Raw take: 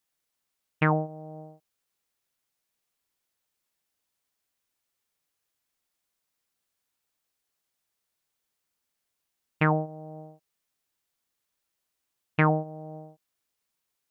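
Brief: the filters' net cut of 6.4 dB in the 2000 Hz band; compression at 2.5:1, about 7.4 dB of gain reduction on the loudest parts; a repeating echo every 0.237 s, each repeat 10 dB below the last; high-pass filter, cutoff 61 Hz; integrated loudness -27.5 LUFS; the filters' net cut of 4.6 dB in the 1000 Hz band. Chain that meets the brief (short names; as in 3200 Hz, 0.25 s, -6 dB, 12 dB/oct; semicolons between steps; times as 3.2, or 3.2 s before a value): HPF 61 Hz; bell 1000 Hz -4.5 dB; bell 2000 Hz -6.5 dB; compressor 2.5:1, threshold -30 dBFS; feedback echo 0.237 s, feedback 32%, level -10 dB; gain +9.5 dB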